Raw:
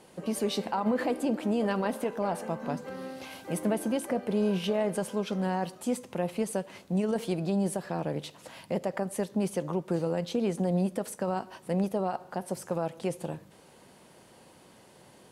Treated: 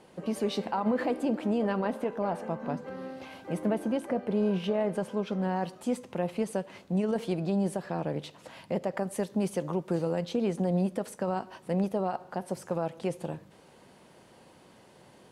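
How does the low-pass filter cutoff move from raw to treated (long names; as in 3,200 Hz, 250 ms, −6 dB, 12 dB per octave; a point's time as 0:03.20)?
low-pass filter 6 dB per octave
3,800 Hz
from 0:01.58 2,200 Hz
from 0:05.56 4,400 Hz
from 0:08.97 11,000 Hz
from 0:10.22 5,300 Hz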